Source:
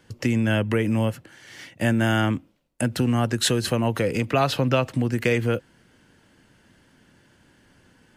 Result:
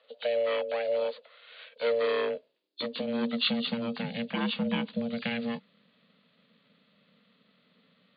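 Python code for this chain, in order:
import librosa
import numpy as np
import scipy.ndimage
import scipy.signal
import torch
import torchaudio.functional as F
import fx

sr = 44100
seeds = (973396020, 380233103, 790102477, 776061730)

y = fx.freq_compress(x, sr, knee_hz=2900.0, ratio=4.0)
y = fx.highpass(y, sr, hz=130.0, slope=6)
y = fx.peak_eq(y, sr, hz=480.0, db=-14.0, octaves=2.1)
y = y * np.sin(2.0 * np.pi * 350.0 * np.arange(len(y)) / sr)
y = fx.filter_sweep_highpass(y, sr, from_hz=550.0, to_hz=190.0, start_s=1.58, end_s=3.85, q=4.4)
y = y * 10.0 ** (-3.0 / 20.0)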